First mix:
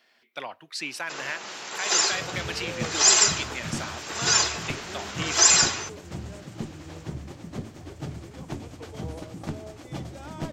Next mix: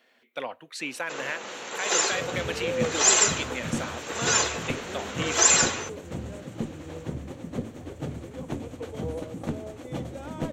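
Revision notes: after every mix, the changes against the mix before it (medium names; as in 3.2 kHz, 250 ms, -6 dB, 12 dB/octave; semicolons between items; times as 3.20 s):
master: add graphic EQ with 31 bands 250 Hz +7 dB, 500 Hz +10 dB, 5 kHz -10 dB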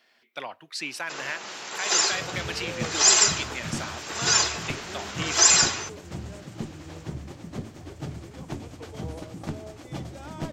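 master: add graphic EQ with 31 bands 250 Hz -7 dB, 500 Hz -10 dB, 5 kHz +10 dB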